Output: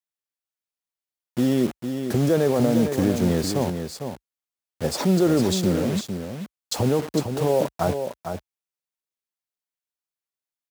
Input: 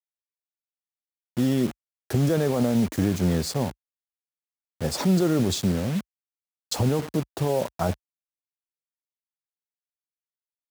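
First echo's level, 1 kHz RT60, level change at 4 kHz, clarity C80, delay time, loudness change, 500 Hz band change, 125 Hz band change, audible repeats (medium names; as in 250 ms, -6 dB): -7.5 dB, no reverb, +2.0 dB, no reverb, 454 ms, +2.0 dB, +5.0 dB, 0.0 dB, 1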